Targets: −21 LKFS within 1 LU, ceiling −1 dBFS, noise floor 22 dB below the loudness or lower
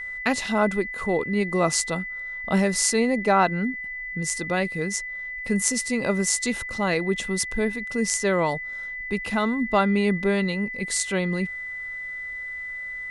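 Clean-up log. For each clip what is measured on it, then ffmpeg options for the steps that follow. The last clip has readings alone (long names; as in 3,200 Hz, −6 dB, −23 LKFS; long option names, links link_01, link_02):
interfering tone 2,000 Hz; level of the tone −31 dBFS; integrated loudness −24.5 LKFS; sample peak −3.5 dBFS; target loudness −21.0 LKFS
→ -af "bandreject=frequency=2000:width=30"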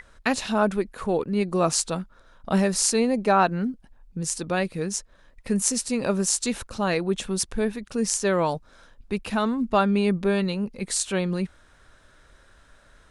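interfering tone none found; integrated loudness −25.0 LKFS; sample peak −3.5 dBFS; target loudness −21.0 LKFS
→ -af "volume=4dB,alimiter=limit=-1dB:level=0:latency=1"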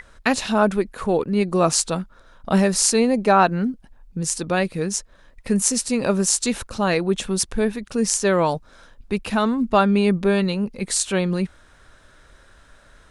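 integrated loudness −21.0 LKFS; sample peak −1.0 dBFS; background noise floor −52 dBFS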